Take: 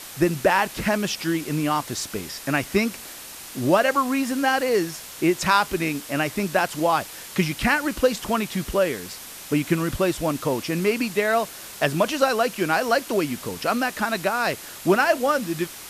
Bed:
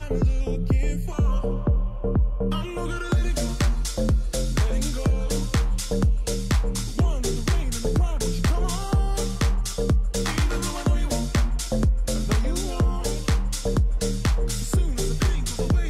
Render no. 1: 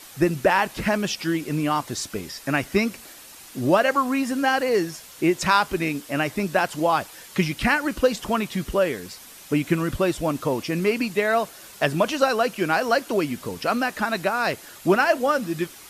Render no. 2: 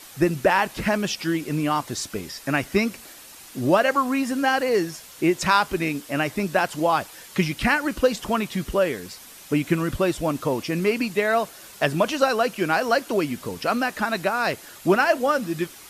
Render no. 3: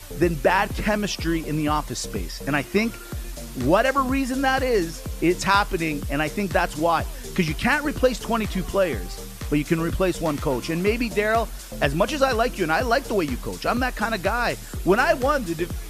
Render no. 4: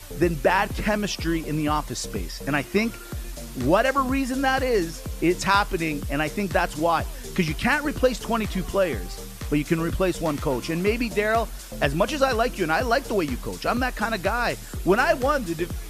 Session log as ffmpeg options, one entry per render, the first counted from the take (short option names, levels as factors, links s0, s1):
-af "afftdn=nr=7:nf=-40"
-af anull
-filter_complex "[1:a]volume=0.282[s0];[0:a][s0]amix=inputs=2:normalize=0"
-af "volume=0.891"